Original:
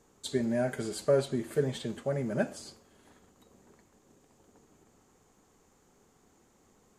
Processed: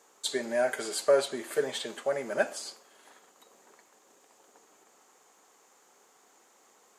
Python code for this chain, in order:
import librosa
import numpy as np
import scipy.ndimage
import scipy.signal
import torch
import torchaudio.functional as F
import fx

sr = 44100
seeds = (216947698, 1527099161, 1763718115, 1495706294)

y = scipy.signal.sosfilt(scipy.signal.butter(2, 600.0, 'highpass', fs=sr, output='sos'), x)
y = y * 10.0 ** (7.0 / 20.0)